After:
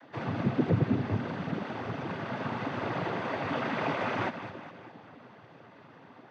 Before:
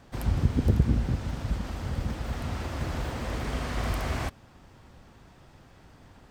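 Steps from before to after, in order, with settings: high-pass 360 Hz 6 dB/octave; distance through air 390 m; on a send: two-band feedback delay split 530 Hz, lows 295 ms, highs 206 ms, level -10.5 dB; on the sum: noise-vocoded speech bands 16; trim +7.5 dB

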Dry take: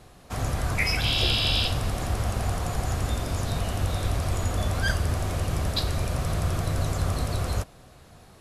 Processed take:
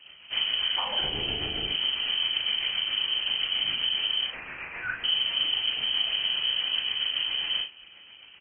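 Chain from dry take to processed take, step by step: 4.26–5.04 s: high-pass 730 Hz 12 dB/octave; compression 20:1, threshold -25 dBFS, peak gain reduction 7.5 dB; rotary cabinet horn 7.5 Hz; short-mantissa float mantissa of 2-bit; early reflections 38 ms -3.5 dB, 53 ms -11 dB, 76 ms -13.5 dB; frequency inversion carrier 3.1 kHz; Vorbis 32 kbps 22.05 kHz

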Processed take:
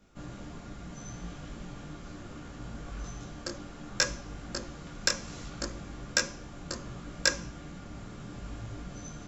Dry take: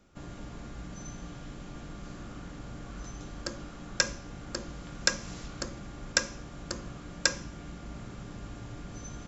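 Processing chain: in parallel at -5 dB: overload inside the chain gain 9 dB; on the sum: detune thickener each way 24 cents

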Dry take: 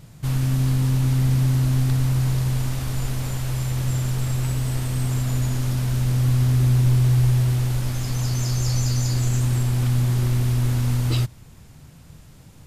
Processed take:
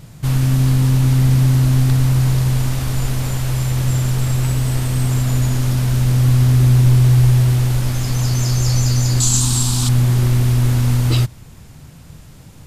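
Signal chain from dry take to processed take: 9.20–9.89 s: ten-band graphic EQ 125 Hz -4 dB, 250 Hz +4 dB, 500 Hz -12 dB, 1 kHz +7 dB, 2 kHz -9 dB, 4 kHz +11 dB, 8 kHz +12 dB; trim +6 dB

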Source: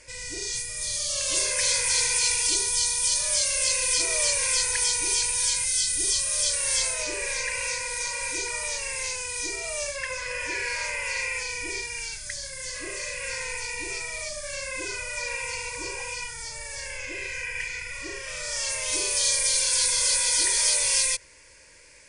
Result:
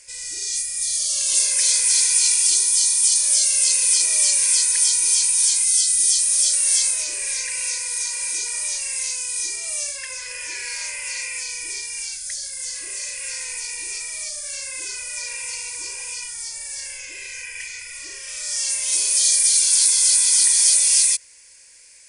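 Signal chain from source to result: pre-emphasis filter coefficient 0.9; trim +7.5 dB

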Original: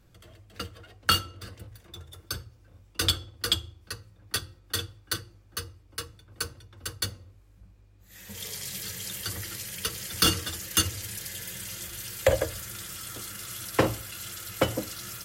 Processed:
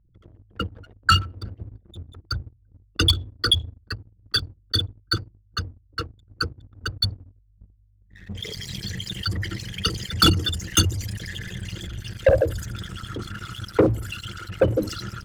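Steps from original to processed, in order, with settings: resonances exaggerated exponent 3; level-controlled noise filter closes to 1.7 kHz, open at -24.5 dBFS; waveshaping leveller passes 2; trim +2 dB

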